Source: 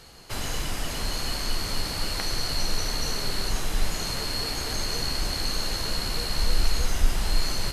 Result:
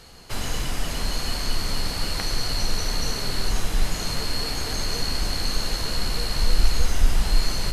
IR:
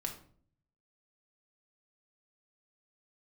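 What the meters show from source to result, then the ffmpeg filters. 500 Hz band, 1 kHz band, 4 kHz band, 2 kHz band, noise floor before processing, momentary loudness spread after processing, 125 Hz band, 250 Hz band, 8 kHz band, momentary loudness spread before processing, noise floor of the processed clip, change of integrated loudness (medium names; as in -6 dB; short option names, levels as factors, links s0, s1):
+1.5 dB, +1.5 dB, +1.0 dB, +1.5 dB, -32 dBFS, 4 LU, +3.5 dB, +2.5 dB, +1.0 dB, 3 LU, -30 dBFS, +2.0 dB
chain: -filter_complex "[0:a]asplit=2[s0][s1];[s1]lowshelf=f=240:g=10.5[s2];[1:a]atrim=start_sample=2205,lowpass=12000[s3];[s2][s3]afir=irnorm=-1:irlink=0,volume=0.2[s4];[s0][s4]amix=inputs=2:normalize=0"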